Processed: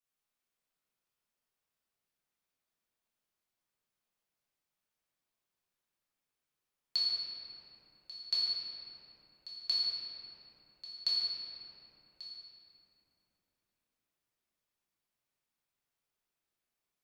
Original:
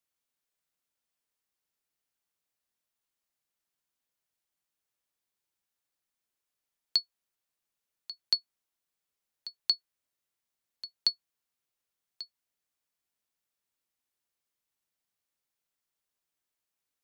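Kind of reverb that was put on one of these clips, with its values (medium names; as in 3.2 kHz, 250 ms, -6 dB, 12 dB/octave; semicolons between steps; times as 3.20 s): simulated room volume 200 m³, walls hard, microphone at 1.4 m; trim -9 dB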